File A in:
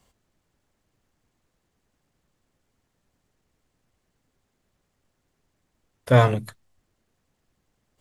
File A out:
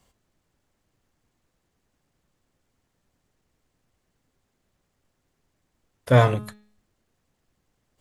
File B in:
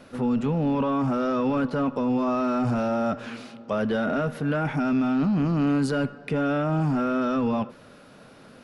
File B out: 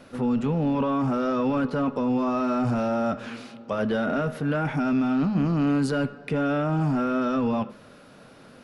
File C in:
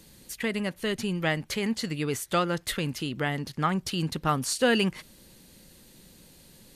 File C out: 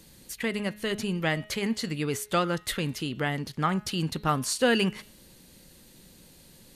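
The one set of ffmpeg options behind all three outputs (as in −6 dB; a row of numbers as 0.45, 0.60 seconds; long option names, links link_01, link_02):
-af "bandreject=frequency=210:width_type=h:width=4,bandreject=frequency=420:width_type=h:width=4,bandreject=frequency=630:width_type=h:width=4,bandreject=frequency=840:width_type=h:width=4,bandreject=frequency=1050:width_type=h:width=4,bandreject=frequency=1260:width_type=h:width=4,bandreject=frequency=1470:width_type=h:width=4,bandreject=frequency=1680:width_type=h:width=4,bandreject=frequency=1890:width_type=h:width=4,bandreject=frequency=2100:width_type=h:width=4,bandreject=frequency=2310:width_type=h:width=4,bandreject=frequency=2520:width_type=h:width=4,bandreject=frequency=2730:width_type=h:width=4,bandreject=frequency=2940:width_type=h:width=4,bandreject=frequency=3150:width_type=h:width=4,bandreject=frequency=3360:width_type=h:width=4,bandreject=frequency=3570:width_type=h:width=4,bandreject=frequency=3780:width_type=h:width=4,bandreject=frequency=3990:width_type=h:width=4,bandreject=frequency=4200:width_type=h:width=4,bandreject=frequency=4410:width_type=h:width=4"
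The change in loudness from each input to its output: 0.0, 0.0, 0.0 LU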